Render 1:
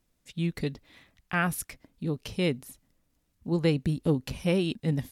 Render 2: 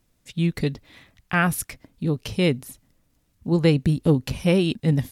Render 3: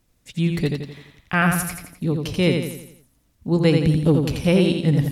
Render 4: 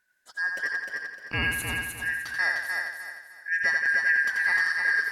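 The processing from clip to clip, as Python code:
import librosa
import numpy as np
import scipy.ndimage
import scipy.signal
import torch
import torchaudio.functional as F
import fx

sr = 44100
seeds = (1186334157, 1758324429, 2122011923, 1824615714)

y1 = fx.peak_eq(x, sr, hz=110.0, db=4.0, octaves=0.77)
y1 = y1 * 10.0 ** (6.0 / 20.0)
y2 = fx.echo_feedback(y1, sr, ms=85, feedback_pct=47, wet_db=-5)
y2 = y2 * 10.0 ** (1.0 / 20.0)
y3 = fx.band_shuffle(y2, sr, order='2143')
y3 = fx.echo_feedback(y3, sr, ms=304, feedback_pct=32, wet_db=-4.0)
y3 = y3 * 10.0 ** (-8.5 / 20.0)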